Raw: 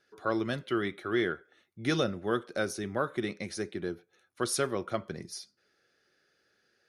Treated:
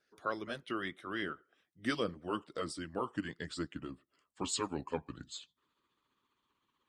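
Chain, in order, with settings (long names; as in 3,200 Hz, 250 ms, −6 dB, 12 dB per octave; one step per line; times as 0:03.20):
pitch glide at a constant tempo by −7 semitones starting unshifted
harmonic and percussive parts rebalanced harmonic −13 dB
level −2 dB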